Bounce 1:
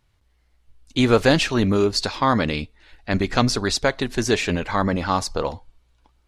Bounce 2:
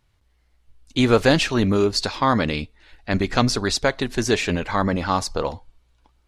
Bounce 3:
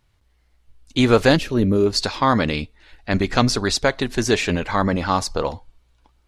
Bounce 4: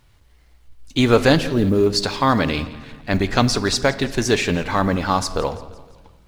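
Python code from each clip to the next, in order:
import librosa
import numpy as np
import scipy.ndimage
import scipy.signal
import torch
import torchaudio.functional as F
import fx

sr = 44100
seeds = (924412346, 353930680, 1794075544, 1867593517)

y1 = x
y2 = fx.spec_box(y1, sr, start_s=1.36, length_s=0.5, low_hz=620.0, high_hz=9700.0, gain_db=-10)
y2 = y2 * 10.0 ** (1.5 / 20.0)
y3 = fx.law_mismatch(y2, sr, coded='mu')
y3 = fx.echo_feedback(y3, sr, ms=170, feedback_pct=52, wet_db=-19.5)
y3 = fx.room_shoebox(y3, sr, seeds[0], volume_m3=760.0, walls='mixed', distance_m=0.32)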